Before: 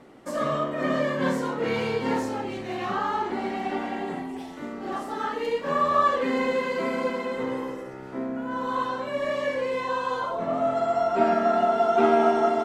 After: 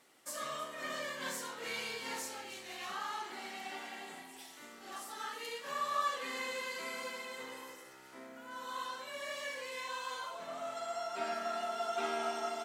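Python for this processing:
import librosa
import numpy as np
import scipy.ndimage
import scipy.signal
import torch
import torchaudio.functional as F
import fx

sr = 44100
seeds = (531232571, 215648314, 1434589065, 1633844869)

y = scipy.signal.lfilter([1.0, -0.97], [1.0], x)
y = fx.echo_split(y, sr, split_hz=1600.0, low_ms=86, high_ms=319, feedback_pct=52, wet_db=-15)
y = F.gain(torch.from_numpy(y), 3.0).numpy()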